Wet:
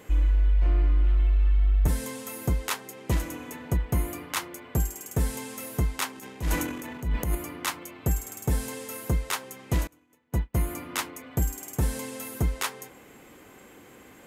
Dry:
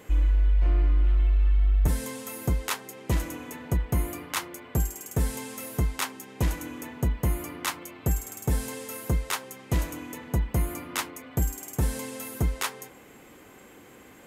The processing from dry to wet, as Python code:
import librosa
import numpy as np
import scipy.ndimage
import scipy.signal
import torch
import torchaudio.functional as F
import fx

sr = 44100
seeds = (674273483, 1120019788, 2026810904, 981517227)

y = fx.transient(x, sr, attack_db=-11, sustain_db=10, at=(6.12, 7.35))
y = fx.upward_expand(y, sr, threshold_db=-41.0, expansion=2.5, at=(9.87, 10.55))